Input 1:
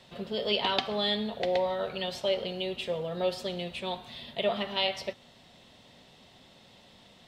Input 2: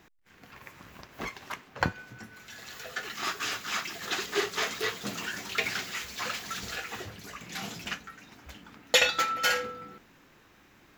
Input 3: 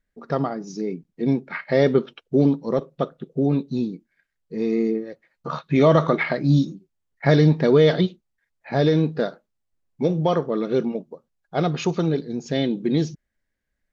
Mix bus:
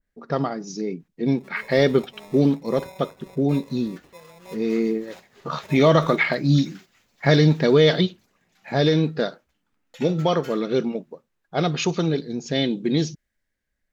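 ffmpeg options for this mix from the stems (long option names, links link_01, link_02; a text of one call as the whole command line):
ffmpeg -i stem1.wav -i stem2.wav -i stem3.wav -filter_complex "[0:a]equalizer=frequency=2000:width=0.8:gain=-7.5,acrusher=samples=29:mix=1:aa=0.000001,adelay=1250,volume=-13dB[link_01];[1:a]adelay=1000,volume=-17.5dB[link_02];[2:a]adynamicequalizer=threshold=0.0158:dfrequency=1800:dqfactor=0.7:tfrequency=1800:tqfactor=0.7:attack=5:release=100:ratio=0.375:range=3.5:mode=boostabove:tftype=highshelf,volume=-0.5dB,asplit=2[link_03][link_04];[link_04]apad=whole_len=528106[link_05];[link_02][link_05]sidechaingate=range=-9dB:threshold=-43dB:ratio=16:detection=peak[link_06];[link_01][link_06][link_03]amix=inputs=3:normalize=0" out.wav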